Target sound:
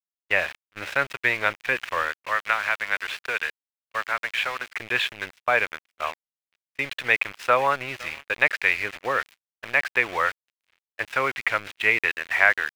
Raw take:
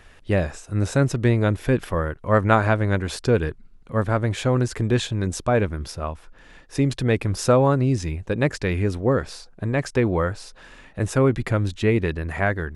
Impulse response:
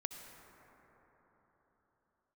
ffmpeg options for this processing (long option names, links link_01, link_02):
-filter_complex "[0:a]acrossover=split=580 3300:gain=0.0794 1 0.158[link_01][link_02][link_03];[link_01][link_02][link_03]amix=inputs=3:normalize=0,asettb=1/sr,asplit=3[link_04][link_05][link_06];[link_04]atrim=end=2.164[link_07];[link_05]atrim=start=2.16:end=4.77,asetpts=PTS-STARTPTS,afade=type=in:duration=0.004:curve=qsin,afade=type=out:start_time=2.606:duration=0.004:curve=qsin,acrossover=split=260|550|1200|5200[link_08][link_09][link_10][link_11][link_12];[link_08]acompressor=threshold=-55dB:ratio=4[link_13];[link_09]acompressor=threshold=-43dB:ratio=4[link_14];[link_10]acompressor=threshold=-39dB:ratio=4[link_15];[link_11]acompressor=threshold=-30dB:ratio=4[link_16];[link_12]acompressor=threshold=-54dB:ratio=4[link_17];[link_13][link_14][link_15][link_16][link_17]amix=inputs=5:normalize=0[link_18];[link_06]atrim=start=4.766[link_19];[link_07][link_18]acrossfade=duration=0.004:curve1=hsin:curve2=qsin[link_20];[link_20][link_19]acrossfade=duration=0.004:curve1=qsin:curve2=hsin,aecho=1:1:507|1014|1521:0.0841|0.0328|0.0128,aeval=exprs='val(0)*gte(abs(val(0)),0.0126)':channel_layout=same,agate=range=-24dB:threshold=-43dB:ratio=16:detection=peak,equalizer=frequency=2400:width_type=o:width=1.6:gain=15,volume=-1dB"